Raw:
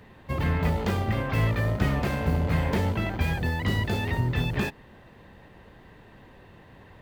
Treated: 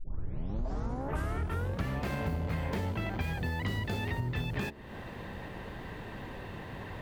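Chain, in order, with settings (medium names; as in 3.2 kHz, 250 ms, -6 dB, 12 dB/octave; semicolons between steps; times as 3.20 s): tape start-up on the opening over 2.00 s; de-hum 71.48 Hz, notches 9; compression 5:1, threshold -41 dBFS, peak gain reduction 20 dB; trim +8.5 dB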